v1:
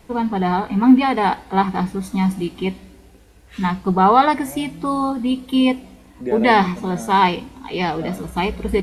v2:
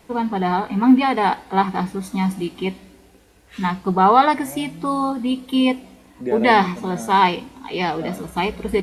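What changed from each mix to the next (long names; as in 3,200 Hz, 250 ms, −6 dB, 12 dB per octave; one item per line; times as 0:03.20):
first voice: add low-shelf EQ 110 Hz −10 dB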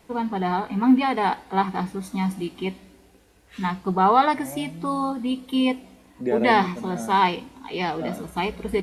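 first voice −4.0 dB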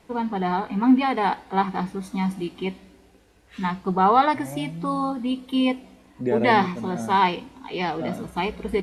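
first voice: add high-shelf EQ 9,900 Hz −9 dB
second voice: remove high-pass filter 190 Hz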